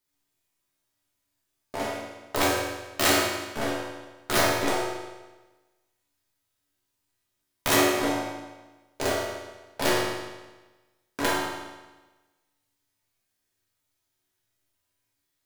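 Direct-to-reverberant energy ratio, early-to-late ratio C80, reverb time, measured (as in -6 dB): -6.0 dB, 2.5 dB, 1.2 s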